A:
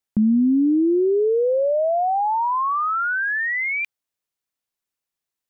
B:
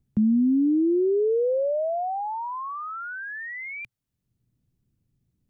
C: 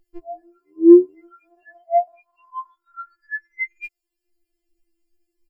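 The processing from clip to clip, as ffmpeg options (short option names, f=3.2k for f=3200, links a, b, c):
-filter_complex "[0:a]equalizer=f=120:t=o:w=0.42:g=7,acrossover=split=230|630[a][b][c];[a]acompressor=mode=upward:threshold=-40dB:ratio=2.5[d];[c]alimiter=level_in=5dB:limit=-24dB:level=0:latency=1:release=68,volume=-5dB[e];[d][b][e]amix=inputs=3:normalize=0,volume=-3.5dB"
-af "asoftclip=type=tanh:threshold=-17.5dB,aecho=1:1:5.4:0.96,afftfilt=real='re*4*eq(mod(b,16),0)':imag='im*4*eq(mod(b,16),0)':win_size=2048:overlap=0.75,volume=3.5dB"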